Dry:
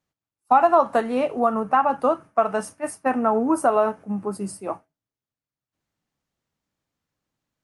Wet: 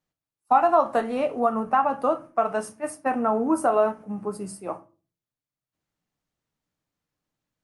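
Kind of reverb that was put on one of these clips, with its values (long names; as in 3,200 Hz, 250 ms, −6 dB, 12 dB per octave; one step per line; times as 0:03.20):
rectangular room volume 180 cubic metres, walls furnished, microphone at 0.48 metres
level −3 dB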